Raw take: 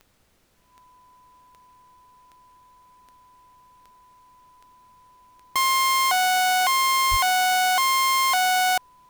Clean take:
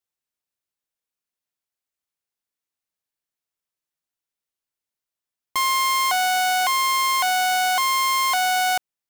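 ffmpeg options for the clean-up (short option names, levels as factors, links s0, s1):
-filter_complex "[0:a]adeclick=t=4,bandreject=f=1000:w=30,asplit=3[s0][s1][s2];[s0]afade=t=out:st=7.1:d=0.02[s3];[s1]highpass=f=140:w=0.5412,highpass=f=140:w=1.3066,afade=t=in:st=7.1:d=0.02,afade=t=out:st=7.22:d=0.02[s4];[s2]afade=t=in:st=7.22:d=0.02[s5];[s3][s4][s5]amix=inputs=3:normalize=0,agate=range=0.0891:threshold=0.00447"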